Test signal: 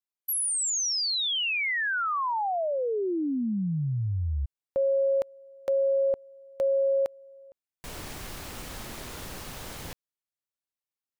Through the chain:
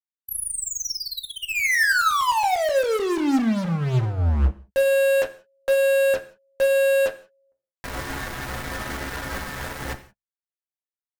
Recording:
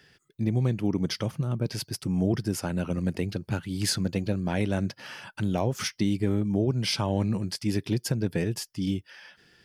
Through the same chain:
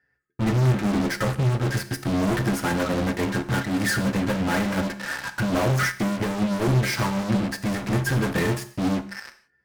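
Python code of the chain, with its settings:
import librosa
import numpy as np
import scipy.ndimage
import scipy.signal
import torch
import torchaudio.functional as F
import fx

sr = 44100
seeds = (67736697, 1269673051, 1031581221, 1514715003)

p1 = fx.high_shelf_res(x, sr, hz=2400.0, db=-9.5, q=3.0)
p2 = fx.stiff_resonator(p1, sr, f0_hz=64.0, decay_s=0.24, stiffness=0.008)
p3 = fx.fuzz(p2, sr, gain_db=49.0, gate_db=-48.0)
p4 = p2 + F.gain(torch.from_numpy(p3), -3.5).numpy()
p5 = fx.rev_gated(p4, sr, seeds[0], gate_ms=200, shape='falling', drr_db=8.0)
p6 = fx.upward_expand(p5, sr, threshold_db=-24.0, expansion=1.5)
y = F.gain(torch.from_numpy(p6), -3.0).numpy()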